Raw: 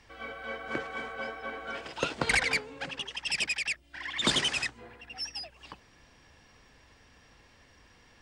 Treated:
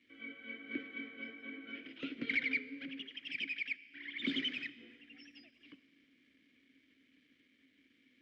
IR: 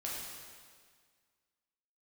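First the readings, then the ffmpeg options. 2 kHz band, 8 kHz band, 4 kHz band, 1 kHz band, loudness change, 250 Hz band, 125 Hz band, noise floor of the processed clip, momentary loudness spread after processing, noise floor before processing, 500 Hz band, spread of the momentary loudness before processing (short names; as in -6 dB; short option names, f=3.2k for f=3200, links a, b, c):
-7.5 dB, under -30 dB, -11.0 dB, -26.0 dB, -8.5 dB, -2.0 dB, -17.5 dB, -72 dBFS, 21 LU, -60 dBFS, -16.0 dB, 15 LU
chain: -filter_complex "[0:a]acrossover=split=160|2400[a][b][c];[b]acontrast=38[d];[a][d][c]amix=inputs=3:normalize=0,aeval=exprs='(tanh(8.91*val(0)+0.4)-tanh(0.4))/8.91':c=same,lowpass=4.4k,aeval=exprs='val(0)*gte(abs(val(0)),0.00168)':c=same,asplit=3[e][f][g];[e]bandpass=f=270:t=q:w=8,volume=0dB[h];[f]bandpass=f=2.29k:t=q:w=8,volume=-6dB[i];[g]bandpass=f=3.01k:t=q:w=8,volume=-9dB[j];[h][i][j]amix=inputs=3:normalize=0,asplit=2[k][l];[1:a]atrim=start_sample=2205,asetrate=41895,aresample=44100[m];[l][m]afir=irnorm=-1:irlink=0,volume=-15.5dB[n];[k][n]amix=inputs=2:normalize=0,volume=1dB"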